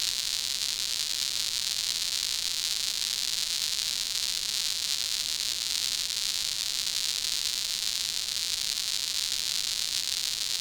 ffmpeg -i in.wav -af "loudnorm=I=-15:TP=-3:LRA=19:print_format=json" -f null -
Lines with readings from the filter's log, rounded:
"input_i" : "-27.1",
"input_tp" : "-8.6",
"input_lra" : "0.4",
"input_thresh" : "-37.1",